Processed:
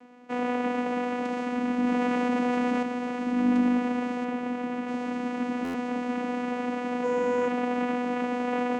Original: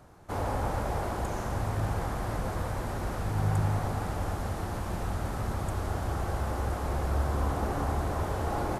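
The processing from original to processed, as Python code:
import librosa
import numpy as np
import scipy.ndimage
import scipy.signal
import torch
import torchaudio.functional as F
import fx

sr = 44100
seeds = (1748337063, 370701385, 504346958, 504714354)

y = fx.high_shelf(x, sr, hz=4100.0, db=-9.5, at=(4.24, 4.88))
y = fx.vocoder(y, sr, bands=4, carrier='saw', carrier_hz=246.0)
y = fx.low_shelf(y, sr, hz=290.0, db=-6.5)
y = fx.room_flutter(y, sr, wall_m=9.4, rt60_s=1.1, at=(7.03, 7.47), fade=0.02)
y = fx.buffer_glitch(y, sr, at_s=(5.64,), block=512, repeats=8)
y = fx.env_flatten(y, sr, amount_pct=70, at=(1.83, 2.83))
y = y * librosa.db_to_amplitude(8.5)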